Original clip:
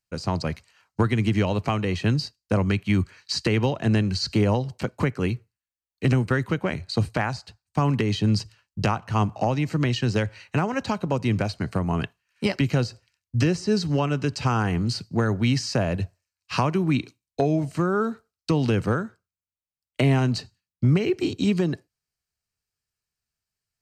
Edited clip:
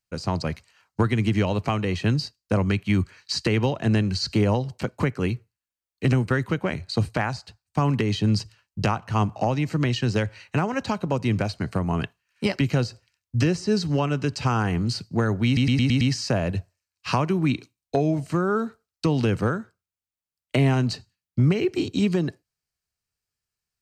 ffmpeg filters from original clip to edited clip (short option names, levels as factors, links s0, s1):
-filter_complex "[0:a]asplit=6[s0][s1][s2][s3][s4][s5];[s0]atrim=end=15.572[s6];[s1]atrim=start=15.458:end=15.572[s7];[s2]atrim=start=15.458:end=15.572[s8];[s3]atrim=start=15.458:end=15.572[s9];[s4]atrim=start=15.458:end=15.572[s10];[s5]atrim=start=15.458[s11];[s6][s7]acrossfade=d=0.004:c1=hsin:c2=hsin[s12];[s12][s8]acrossfade=d=0.004:c1=hsin:c2=hsin[s13];[s13][s9]acrossfade=d=0.004:c1=hsin:c2=hsin[s14];[s14][s10]acrossfade=d=0.004:c1=hsin:c2=hsin[s15];[s15][s11]acrossfade=d=0.004:c1=hsin:c2=hsin"